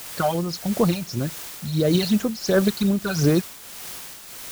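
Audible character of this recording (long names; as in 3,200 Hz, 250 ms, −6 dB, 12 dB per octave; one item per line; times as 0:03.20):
phaser sweep stages 12, 2.8 Hz, lowest notch 330–4,600 Hz
a quantiser's noise floor 6 bits, dither triangular
tremolo triangle 1.6 Hz, depth 60%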